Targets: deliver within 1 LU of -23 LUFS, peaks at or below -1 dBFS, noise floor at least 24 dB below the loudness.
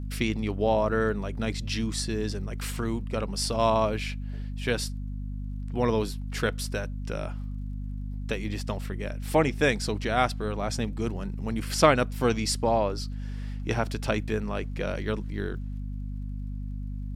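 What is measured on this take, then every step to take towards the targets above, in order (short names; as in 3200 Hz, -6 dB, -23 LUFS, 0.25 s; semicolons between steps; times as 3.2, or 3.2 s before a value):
ticks 26/s; hum 50 Hz; harmonics up to 250 Hz; hum level -31 dBFS; loudness -29.0 LUFS; peak -6.0 dBFS; loudness target -23.0 LUFS
-> de-click; de-hum 50 Hz, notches 5; gain +6 dB; limiter -1 dBFS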